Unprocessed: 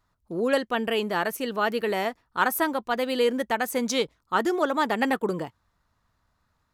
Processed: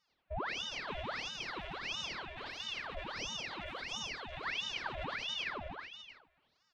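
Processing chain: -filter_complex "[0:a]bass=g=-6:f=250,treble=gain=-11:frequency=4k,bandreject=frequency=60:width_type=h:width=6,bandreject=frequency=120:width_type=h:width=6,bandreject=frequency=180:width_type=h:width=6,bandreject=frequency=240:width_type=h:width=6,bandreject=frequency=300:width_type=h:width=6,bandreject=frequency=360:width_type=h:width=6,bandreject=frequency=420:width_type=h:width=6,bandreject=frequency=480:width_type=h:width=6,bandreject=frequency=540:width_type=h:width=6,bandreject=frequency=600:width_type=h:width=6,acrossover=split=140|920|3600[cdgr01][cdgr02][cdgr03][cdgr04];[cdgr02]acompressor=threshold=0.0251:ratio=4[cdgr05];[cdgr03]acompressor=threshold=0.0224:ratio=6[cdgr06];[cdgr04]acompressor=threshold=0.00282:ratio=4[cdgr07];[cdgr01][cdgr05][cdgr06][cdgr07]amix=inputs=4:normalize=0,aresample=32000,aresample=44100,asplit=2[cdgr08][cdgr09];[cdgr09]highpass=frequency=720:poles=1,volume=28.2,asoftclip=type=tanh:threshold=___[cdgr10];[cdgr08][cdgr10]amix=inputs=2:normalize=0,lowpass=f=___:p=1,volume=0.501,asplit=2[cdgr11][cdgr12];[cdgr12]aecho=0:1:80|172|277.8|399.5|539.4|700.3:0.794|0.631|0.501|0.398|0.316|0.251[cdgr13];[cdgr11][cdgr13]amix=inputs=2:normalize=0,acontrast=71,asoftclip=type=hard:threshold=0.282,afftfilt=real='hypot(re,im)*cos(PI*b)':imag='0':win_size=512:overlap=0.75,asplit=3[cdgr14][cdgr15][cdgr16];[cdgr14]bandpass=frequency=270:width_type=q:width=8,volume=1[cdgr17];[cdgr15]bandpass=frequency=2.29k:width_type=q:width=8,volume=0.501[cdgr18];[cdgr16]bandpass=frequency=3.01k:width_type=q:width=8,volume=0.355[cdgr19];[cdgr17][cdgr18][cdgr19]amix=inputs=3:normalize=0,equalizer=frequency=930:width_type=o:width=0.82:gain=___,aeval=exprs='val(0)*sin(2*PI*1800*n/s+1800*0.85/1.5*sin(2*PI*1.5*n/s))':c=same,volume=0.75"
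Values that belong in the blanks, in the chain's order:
0.141, 1.3k, 7.5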